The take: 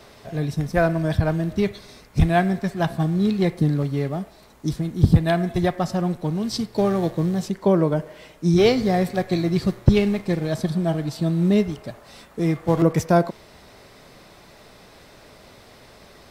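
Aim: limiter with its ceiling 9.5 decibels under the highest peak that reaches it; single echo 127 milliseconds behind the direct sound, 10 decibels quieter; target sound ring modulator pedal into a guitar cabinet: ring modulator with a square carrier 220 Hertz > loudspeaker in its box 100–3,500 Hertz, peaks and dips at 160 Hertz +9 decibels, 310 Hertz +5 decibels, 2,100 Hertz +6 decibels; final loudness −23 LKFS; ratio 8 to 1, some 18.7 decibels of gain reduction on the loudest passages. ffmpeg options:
ffmpeg -i in.wav -af "acompressor=threshold=-29dB:ratio=8,alimiter=level_in=2.5dB:limit=-24dB:level=0:latency=1,volume=-2.5dB,aecho=1:1:127:0.316,aeval=exprs='val(0)*sgn(sin(2*PI*220*n/s))':channel_layout=same,highpass=100,equalizer=frequency=160:width_type=q:width=4:gain=9,equalizer=frequency=310:width_type=q:width=4:gain=5,equalizer=frequency=2100:width_type=q:width=4:gain=6,lowpass=frequency=3500:width=0.5412,lowpass=frequency=3500:width=1.3066,volume=12dB" out.wav

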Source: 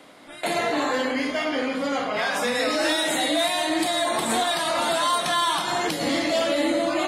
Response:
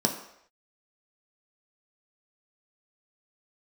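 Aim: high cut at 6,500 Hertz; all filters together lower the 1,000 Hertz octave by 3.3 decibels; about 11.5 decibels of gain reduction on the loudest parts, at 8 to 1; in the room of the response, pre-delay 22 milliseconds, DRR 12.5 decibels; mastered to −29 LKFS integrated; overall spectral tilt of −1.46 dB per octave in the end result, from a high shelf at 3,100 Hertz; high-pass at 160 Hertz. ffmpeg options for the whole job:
-filter_complex "[0:a]highpass=160,lowpass=6500,equalizer=frequency=1000:width_type=o:gain=-5.5,highshelf=frequency=3100:gain=8.5,acompressor=threshold=-31dB:ratio=8,asplit=2[link_01][link_02];[1:a]atrim=start_sample=2205,adelay=22[link_03];[link_02][link_03]afir=irnorm=-1:irlink=0,volume=-22.5dB[link_04];[link_01][link_04]amix=inputs=2:normalize=0,volume=3dB"

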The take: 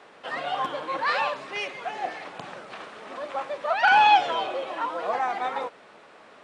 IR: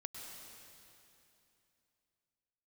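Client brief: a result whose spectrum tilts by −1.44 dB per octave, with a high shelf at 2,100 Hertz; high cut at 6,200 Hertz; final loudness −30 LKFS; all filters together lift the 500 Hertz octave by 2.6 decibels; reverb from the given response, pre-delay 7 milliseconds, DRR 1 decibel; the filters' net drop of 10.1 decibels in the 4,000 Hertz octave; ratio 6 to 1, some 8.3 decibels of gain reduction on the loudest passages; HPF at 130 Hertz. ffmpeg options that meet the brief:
-filter_complex "[0:a]highpass=130,lowpass=6200,equalizer=frequency=500:width_type=o:gain=4,highshelf=frequency=2100:gain=-7,equalizer=frequency=4000:width_type=o:gain=-7,acompressor=threshold=-23dB:ratio=6,asplit=2[link_01][link_02];[1:a]atrim=start_sample=2205,adelay=7[link_03];[link_02][link_03]afir=irnorm=-1:irlink=0,volume=1.5dB[link_04];[link_01][link_04]amix=inputs=2:normalize=0,volume=-2.5dB"

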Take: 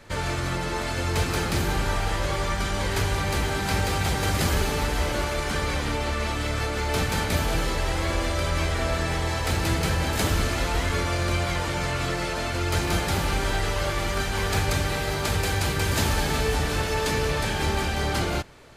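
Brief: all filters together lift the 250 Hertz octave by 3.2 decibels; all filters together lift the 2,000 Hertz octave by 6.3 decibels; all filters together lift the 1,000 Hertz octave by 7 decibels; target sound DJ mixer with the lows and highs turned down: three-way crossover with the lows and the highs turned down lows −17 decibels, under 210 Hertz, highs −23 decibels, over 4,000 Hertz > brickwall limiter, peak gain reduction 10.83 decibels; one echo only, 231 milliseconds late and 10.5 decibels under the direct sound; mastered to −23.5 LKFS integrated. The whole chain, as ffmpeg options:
ffmpeg -i in.wav -filter_complex "[0:a]acrossover=split=210 4000:gain=0.141 1 0.0708[link_01][link_02][link_03];[link_01][link_02][link_03]amix=inputs=3:normalize=0,equalizer=frequency=250:width_type=o:gain=8,equalizer=frequency=1000:width_type=o:gain=7,equalizer=frequency=2000:width_type=o:gain=6,aecho=1:1:231:0.299,volume=5dB,alimiter=limit=-16dB:level=0:latency=1" out.wav

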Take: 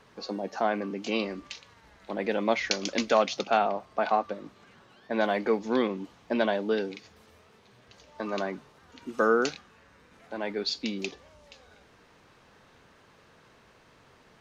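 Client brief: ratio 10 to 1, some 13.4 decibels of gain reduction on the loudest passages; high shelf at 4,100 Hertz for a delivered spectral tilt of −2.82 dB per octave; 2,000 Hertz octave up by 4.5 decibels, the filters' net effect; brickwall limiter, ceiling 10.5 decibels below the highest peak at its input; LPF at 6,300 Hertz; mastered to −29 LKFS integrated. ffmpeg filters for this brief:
ffmpeg -i in.wav -af "lowpass=6300,equalizer=frequency=2000:width_type=o:gain=7.5,highshelf=frequency=4100:gain=-5.5,acompressor=threshold=-31dB:ratio=10,volume=11dB,alimiter=limit=-17dB:level=0:latency=1" out.wav

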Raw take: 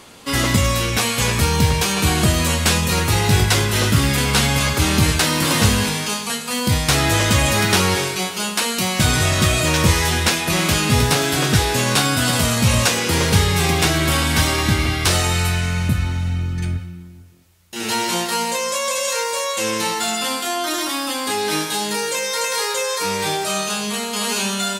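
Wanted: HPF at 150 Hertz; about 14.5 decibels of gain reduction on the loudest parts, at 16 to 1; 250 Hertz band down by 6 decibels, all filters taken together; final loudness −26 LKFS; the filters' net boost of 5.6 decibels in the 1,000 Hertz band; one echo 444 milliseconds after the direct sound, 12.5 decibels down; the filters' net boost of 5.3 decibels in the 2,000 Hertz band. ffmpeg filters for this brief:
ffmpeg -i in.wav -af "highpass=150,equalizer=frequency=250:width_type=o:gain=-7.5,equalizer=frequency=1000:width_type=o:gain=6,equalizer=frequency=2000:width_type=o:gain=5,acompressor=threshold=-25dB:ratio=16,aecho=1:1:444:0.237,volume=1dB" out.wav

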